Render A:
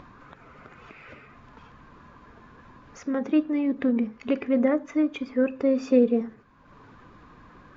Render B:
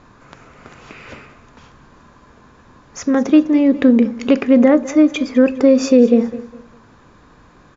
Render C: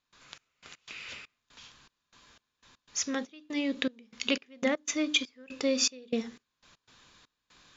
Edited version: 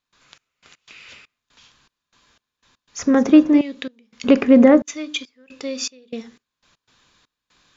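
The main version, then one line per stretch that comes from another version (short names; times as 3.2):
C
2.99–3.61 from B
4.24–4.82 from B
not used: A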